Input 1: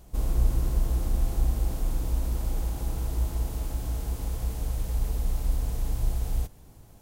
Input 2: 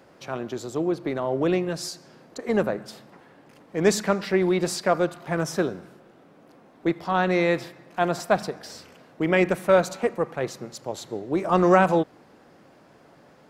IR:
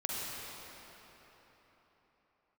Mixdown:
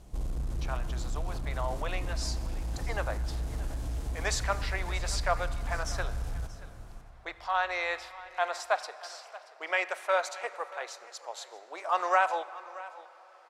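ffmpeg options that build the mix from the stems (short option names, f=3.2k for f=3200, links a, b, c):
-filter_complex "[0:a]asoftclip=type=tanh:threshold=-23dB,acompressor=threshold=-29dB:ratio=6,volume=-2.5dB,asplit=3[a][b][c];[b]volume=-12dB[d];[c]volume=-19dB[e];[1:a]highpass=f=690:w=0.5412,highpass=f=690:w=1.3066,adelay=400,volume=-4dB,asplit=3[f][g][h];[g]volume=-20dB[i];[h]volume=-17.5dB[j];[2:a]atrim=start_sample=2205[k];[d][i]amix=inputs=2:normalize=0[l];[l][k]afir=irnorm=-1:irlink=0[m];[e][j]amix=inputs=2:normalize=0,aecho=0:1:630:1[n];[a][f][m][n]amix=inputs=4:normalize=0,lowpass=9k"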